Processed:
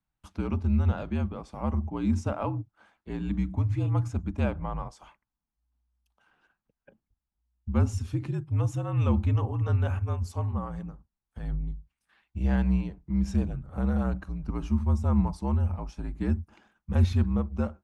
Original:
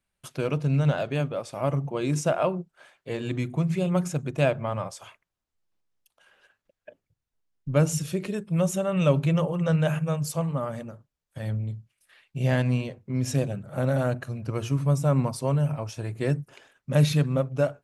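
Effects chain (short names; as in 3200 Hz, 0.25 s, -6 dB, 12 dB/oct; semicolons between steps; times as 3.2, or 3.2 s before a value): EQ curve 160 Hz 0 dB, 280 Hz +6 dB, 570 Hz -12 dB, 870 Hz +1 dB, 2300 Hz -9 dB, 5700 Hz -10 dB, 12000 Hz -18 dB; frequency shift -60 Hz; gain -1.5 dB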